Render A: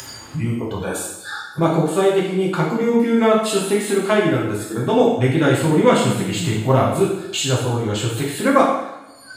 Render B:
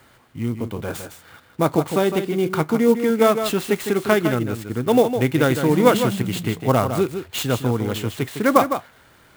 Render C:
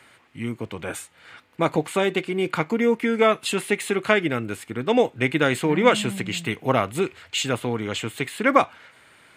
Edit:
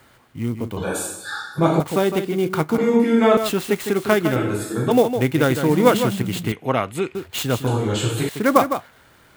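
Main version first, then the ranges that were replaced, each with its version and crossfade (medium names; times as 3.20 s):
B
0.77–1.80 s: from A
2.78–3.37 s: from A
4.36–4.91 s: from A
6.52–7.15 s: from C
7.67–8.29 s: from A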